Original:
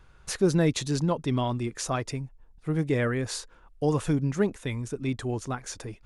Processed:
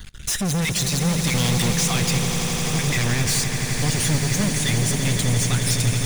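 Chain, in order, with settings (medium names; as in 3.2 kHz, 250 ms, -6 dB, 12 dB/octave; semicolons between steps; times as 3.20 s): random holes in the spectrogram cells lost 20%; treble shelf 3.3 kHz +10 dB; 1.27–1.73 s: waveshaping leveller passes 5; high-order bell 650 Hz -14 dB 2.6 oct; peak limiter -20 dBFS, peak gain reduction 10 dB; waveshaping leveller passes 5; echo with a slow build-up 85 ms, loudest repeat 8, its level -11 dB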